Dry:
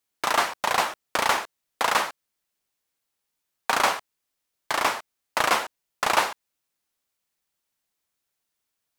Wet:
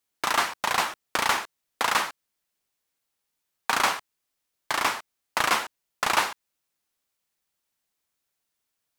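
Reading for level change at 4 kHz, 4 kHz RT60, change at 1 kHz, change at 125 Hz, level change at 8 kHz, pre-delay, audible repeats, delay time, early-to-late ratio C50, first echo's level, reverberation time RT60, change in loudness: 0.0 dB, none, -2.0 dB, 0.0 dB, 0.0 dB, none, none, none, none, none, none, -1.0 dB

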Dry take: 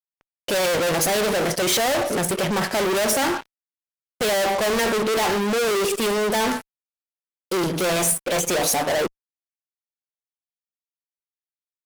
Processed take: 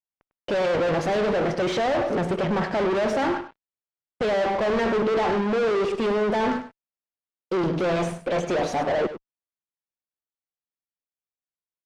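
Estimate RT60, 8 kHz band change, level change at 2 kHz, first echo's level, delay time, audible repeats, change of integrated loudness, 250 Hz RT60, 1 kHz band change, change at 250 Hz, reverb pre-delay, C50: none, under -20 dB, -5.0 dB, -12.0 dB, 0.1 s, 1, -2.5 dB, none, -1.5 dB, 0.0 dB, none, none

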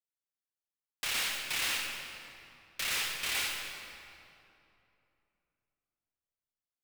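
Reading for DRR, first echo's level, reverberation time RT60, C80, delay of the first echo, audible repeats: 1.5 dB, none, 2.9 s, 3.0 dB, none, none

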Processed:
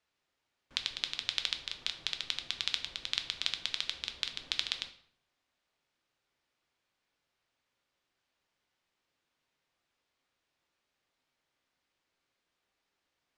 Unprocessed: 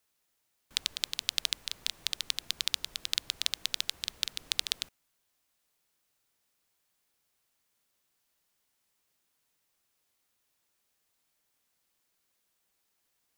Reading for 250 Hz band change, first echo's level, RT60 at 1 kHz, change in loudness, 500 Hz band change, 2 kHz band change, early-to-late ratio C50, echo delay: +0.5 dB, none, 0.60 s, -2.0 dB, +1.0 dB, +0.5 dB, 11.5 dB, none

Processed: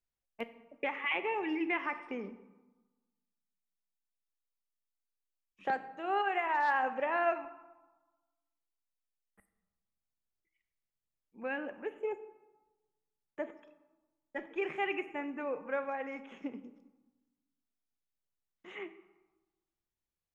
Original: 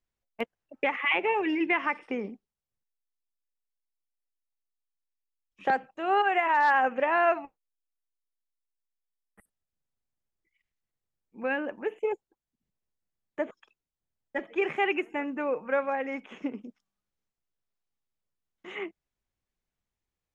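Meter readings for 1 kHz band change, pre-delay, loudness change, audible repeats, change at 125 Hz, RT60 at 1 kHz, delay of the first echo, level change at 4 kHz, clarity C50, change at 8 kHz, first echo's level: -7.0 dB, 16 ms, -7.0 dB, none, n/a, 1.2 s, none, -7.0 dB, 13.5 dB, n/a, none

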